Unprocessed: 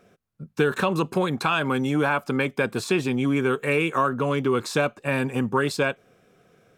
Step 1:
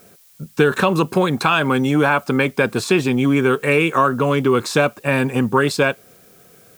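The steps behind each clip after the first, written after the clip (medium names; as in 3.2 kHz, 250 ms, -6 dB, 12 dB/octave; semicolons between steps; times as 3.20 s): added noise blue -58 dBFS; trim +6.5 dB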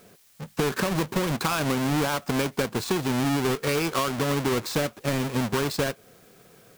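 square wave that keeps the level; compression, threshold -13 dBFS, peak gain reduction 6.5 dB; trim -9 dB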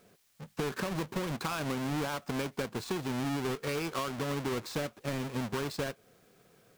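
treble shelf 7.4 kHz -4 dB; trim -8.5 dB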